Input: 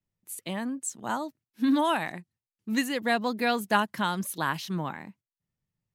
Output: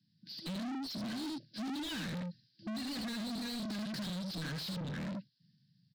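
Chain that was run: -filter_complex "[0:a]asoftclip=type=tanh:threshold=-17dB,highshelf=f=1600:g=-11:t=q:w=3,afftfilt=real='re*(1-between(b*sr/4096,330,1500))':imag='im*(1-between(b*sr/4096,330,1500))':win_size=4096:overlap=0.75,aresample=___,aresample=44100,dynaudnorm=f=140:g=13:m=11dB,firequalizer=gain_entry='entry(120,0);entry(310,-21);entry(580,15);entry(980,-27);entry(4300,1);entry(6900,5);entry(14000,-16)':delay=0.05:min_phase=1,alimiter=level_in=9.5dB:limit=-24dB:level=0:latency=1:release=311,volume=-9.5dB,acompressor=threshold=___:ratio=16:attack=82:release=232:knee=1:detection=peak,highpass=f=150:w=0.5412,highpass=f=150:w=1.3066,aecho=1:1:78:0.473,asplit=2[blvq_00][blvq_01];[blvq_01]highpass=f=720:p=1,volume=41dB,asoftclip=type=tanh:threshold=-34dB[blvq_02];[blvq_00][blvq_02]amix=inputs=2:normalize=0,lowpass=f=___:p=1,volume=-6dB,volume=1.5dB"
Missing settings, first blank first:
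11025, -47dB, 4100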